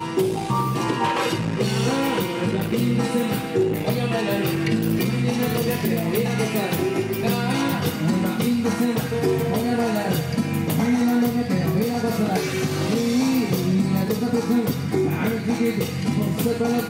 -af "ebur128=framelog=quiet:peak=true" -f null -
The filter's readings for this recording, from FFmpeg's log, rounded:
Integrated loudness:
  I:         -22.2 LUFS
  Threshold: -32.2 LUFS
Loudness range:
  LRA:         0.8 LU
  Threshold: -42.2 LUFS
  LRA low:   -22.5 LUFS
  LRA high:  -21.6 LUFS
True peak:
  Peak:       -9.7 dBFS